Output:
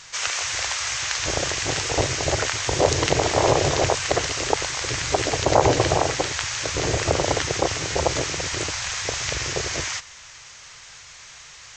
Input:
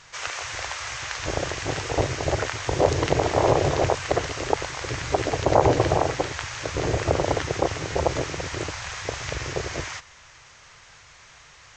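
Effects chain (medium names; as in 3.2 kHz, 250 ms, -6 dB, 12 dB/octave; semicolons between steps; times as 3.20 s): treble shelf 2.6 kHz +11.5 dB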